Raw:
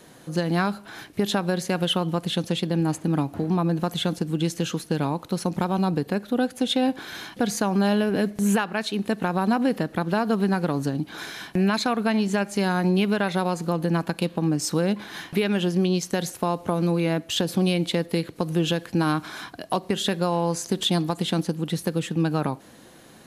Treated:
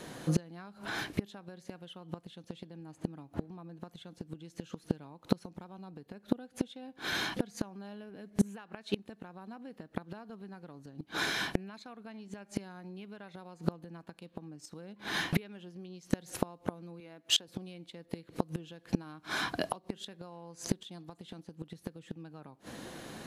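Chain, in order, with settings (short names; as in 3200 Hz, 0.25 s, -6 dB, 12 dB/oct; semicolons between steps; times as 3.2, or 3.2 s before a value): high shelf 9800 Hz -8.5 dB; flipped gate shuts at -18 dBFS, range -29 dB; 17–17.48 HPF 330 Hz 6 dB/oct; gain +4 dB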